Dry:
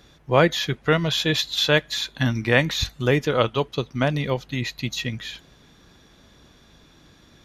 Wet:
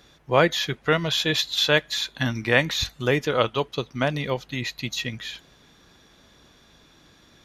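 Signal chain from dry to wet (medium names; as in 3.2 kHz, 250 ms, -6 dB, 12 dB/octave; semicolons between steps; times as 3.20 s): bass shelf 300 Hz -5.5 dB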